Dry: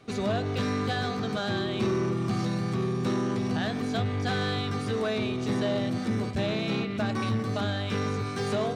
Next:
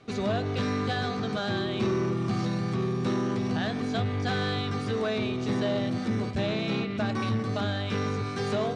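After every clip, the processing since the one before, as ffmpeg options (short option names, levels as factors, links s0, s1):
-af "lowpass=7100"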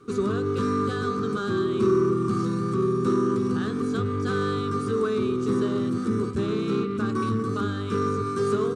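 -af "firequalizer=gain_entry='entry(120,0);entry(410,9);entry(650,-18);entry(1200,9);entry(1900,-9);entry(2800,-7);entry(5000,-4);entry(8500,9)':delay=0.05:min_phase=1"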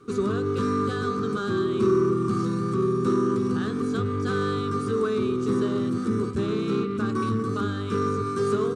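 -af anull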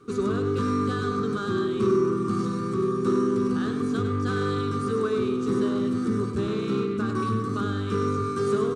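-af "aecho=1:1:100:0.422,volume=0.891"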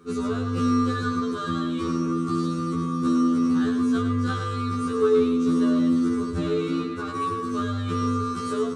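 -af "afftfilt=real='re*2*eq(mod(b,4),0)':imag='im*2*eq(mod(b,4),0)':win_size=2048:overlap=0.75,volume=1.58"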